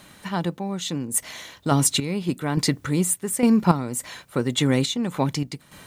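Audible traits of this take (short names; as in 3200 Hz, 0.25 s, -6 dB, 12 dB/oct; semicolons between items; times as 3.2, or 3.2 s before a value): a quantiser's noise floor 12-bit, dither triangular; random-step tremolo 3.5 Hz, depth 80%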